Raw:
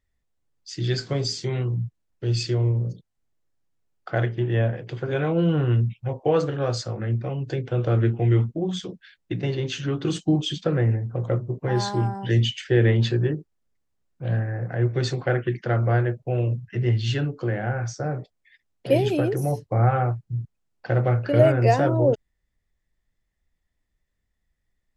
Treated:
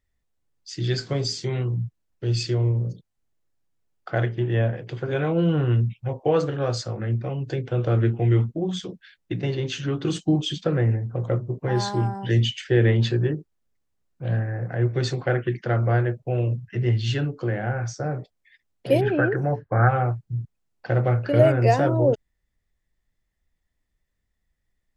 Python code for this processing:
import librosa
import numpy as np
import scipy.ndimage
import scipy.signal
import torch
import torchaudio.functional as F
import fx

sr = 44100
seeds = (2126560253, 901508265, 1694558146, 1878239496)

y = fx.lowpass_res(x, sr, hz=1600.0, q=7.8, at=(19.0, 19.87), fade=0.02)